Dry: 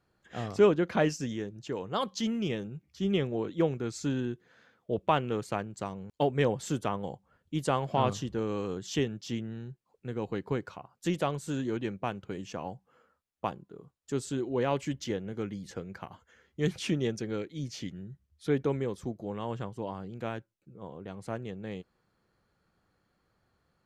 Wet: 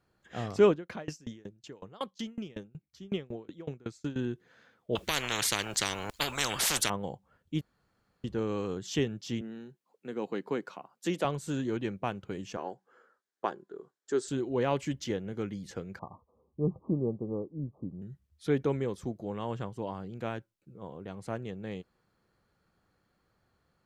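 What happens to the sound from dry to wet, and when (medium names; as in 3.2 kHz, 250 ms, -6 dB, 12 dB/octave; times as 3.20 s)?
0.71–4.16 s: sawtooth tremolo in dB decaying 5.4 Hz, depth 28 dB
4.95–6.90 s: spectrum-flattening compressor 10:1
7.61–8.24 s: room tone
9.41–11.25 s: high-pass 190 Hz 24 dB/octave
12.57–14.28 s: cabinet simulation 300–8800 Hz, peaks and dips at 380 Hz +9 dB, 1.6 kHz +9 dB, 2.6 kHz -7 dB
15.99–18.02 s: Chebyshev low-pass 1.2 kHz, order 10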